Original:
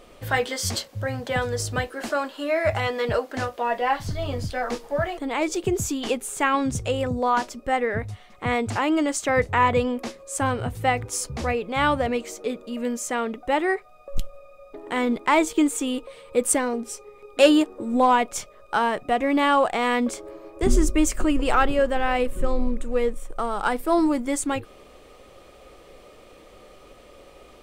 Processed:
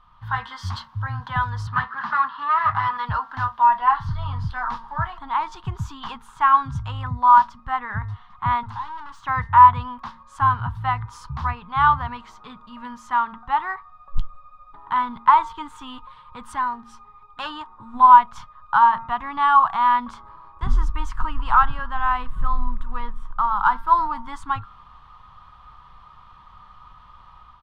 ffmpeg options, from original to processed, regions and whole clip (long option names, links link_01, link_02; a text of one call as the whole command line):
ffmpeg -i in.wav -filter_complex "[0:a]asettb=1/sr,asplit=3[link_01][link_02][link_03];[link_01]atrim=end=1.674[link_04];[link_02]atrim=start=1.67:end=2.97,asetpts=PTS-STARTPTS,afade=type=in:duration=0.004:curve=qsin,afade=type=out:start_time=1.296:duration=0.004:curve=qsin,aeval=exprs='clip(val(0),-1,0.0251)':channel_layout=same,highpass=110,equalizer=frequency=150:width_type=q:width=4:gain=5,equalizer=frequency=210:width_type=q:width=4:gain=6,equalizer=frequency=410:width_type=q:width=4:gain=5,equalizer=frequency=1200:width_type=q:width=4:gain=8,equalizer=frequency=1800:width_type=q:width=4:gain=9,lowpass=frequency=5600:width=0.5412,lowpass=frequency=5600:width=1.3066[link_05];[link_03]atrim=start=2.966[link_06];[link_04][link_05]acrossfade=duration=0.004:curve1=hsin:curve2=qsin[link_07];[link_07][link_06]acrossfade=duration=0.004:curve1=qsin:curve2=hsin,asettb=1/sr,asplit=3[link_08][link_09][link_10];[link_08]atrim=end=8.634[link_11];[link_09]atrim=start=8.63:end=9.26,asetpts=PTS-STARTPTS,afade=type=in:duration=0.004:curve=qsin,afade=type=out:start_time=0.626:duration=0.004:curve=qsin,bandreject=frequency=50:width_type=h:width=6,bandreject=frequency=100:width_type=h:width=6,bandreject=frequency=150:width_type=h:width=6,aeval=exprs='(tanh(56.2*val(0)+0.25)-tanh(0.25))/56.2':channel_layout=same[link_12];[link_10]atrim=start=9.256[link_13];[link_11][link_12]acrossfade=duration=0.004:curve1=hsin:curve2=qsin[link_14];[link_14][link_13]acrossfade=duration=0.004:curve1=qsin:curve2=hsin,bandreject=frequency=228.4:width_type=h:width=4,bandreject=frequency=456.8:width_type=h:width=4,bandreject=frequency=685.2:width_type=h:width=4,bandreject=frequency=913.6:width_type=h:width=4,bandreject=frequency=1142:width_type=h:width=4,bandreject=frequency=1370.4:width_type=h:width=4,bandreject=frequency=1598.8:width_type=h:width=4,bandreject=frequency=1827.2:width_type=h:width=4,bandreject=frequency=2055.6:width_type=h:width=4,dynaudnorm=framelen=120:gausssize=5:maxgain=7dB,firequalizer=gain_entry='entry(140,0);entry(320,-26);entry(550,-29);entry(950,10);entry(2300,-15);entry(3300,-7);entry(7600,-28)':delay=0.05:min_phase=1,volume=-3dB" out.wav